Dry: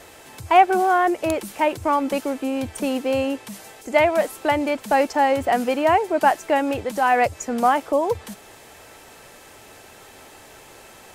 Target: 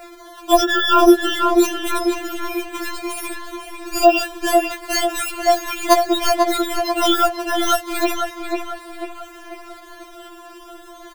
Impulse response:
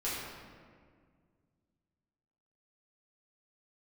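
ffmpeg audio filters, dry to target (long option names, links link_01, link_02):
-filter_complex "[0:a]acrusher=samples=14:mix=1:aa=0.000001:lfo=1:lforange=14:lforate=0.31,aeval=exprs='0.596*(cos(1*acos(clip(val(0)/0.596,-1,1)))-cos(1*PI/2))+0.237*(cos(5*acos(clip(val(0)/0.596,-1,1)))-cos(5*PI/2))':channel_layout=same,asplit=2[link_01][link_02];[link_02]adelay=493,lowpass=frequency=2500:poles=1,volume=-3.5dB,asplit=2[link_03][link_04];[link_04]adelay=493,lowpass=frequency=2500:poles=1,volume=0.51,asplit=2[link_05][link_06];[link_06]adelay=493,lowpass=frequency=2500:poles=1,volume=0.51,asplit=2[link_07][link_08];[link_08]adelay=493,lowpass=frequency=2500:poles=1,volume=0.51,asplit=2[link_09][link_10];[link_10]adelay=493,lowpass=frequency=2500:poles=1,volume=0.51,asplit=2[link_11][link_12];[link_12]adelay=493,lowpass=frequency=2500:poles=1,volume=0.51,asplit=2[link_13][link_14];[link_14]adelay=493,lowpass=frequency=2500:poles=1,volume=0.51[link_15];[link_03][link_05][link_07][link_09][link_11][link_13][link_15]amix=inputs=7:normalize=0[link_16];[link_01][link_16]amix=inputs=2:normalize=0,afftfilt=real='re*4*eq(mod(b,16),0)':imag='im*4*eq(mod(b,16),0)':win_size=2048:overlap=0.75,volume=-3dB"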